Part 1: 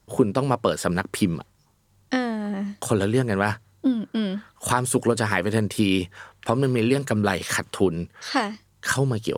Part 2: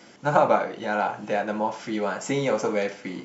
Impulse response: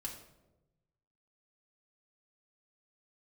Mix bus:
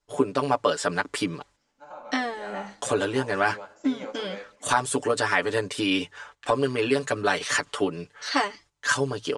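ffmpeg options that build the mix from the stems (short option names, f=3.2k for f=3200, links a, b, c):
-filter_complex "[0:a]agate=range=-13dB:threshold=-48dB:ratio=16:detection=peak,aecho=1:1:6.9:0.96,volume=-1.5dB,asplit=2[a][b];[1:a]adelay=1550,volume=-13.5dB,asplit=2[c][d];[d]volume=-7.5dB[e];[b]apad=whole_len=211604[f];[c][f]sidechaingate=range=-33dB:threshold=-37dB:ratio=16:detection=peak[g];[2:a]atrim=start_sample=2205[h];[e][h]afir=irnorm=-1:irlink=0[i];[a][g][i]amix=inputs=3:normalize=0,lowpass=f=8.5k:w=0.5412,lowpass=f=8.5k:w=1.3066,equalizer=f=130:w=0.67:g=-14"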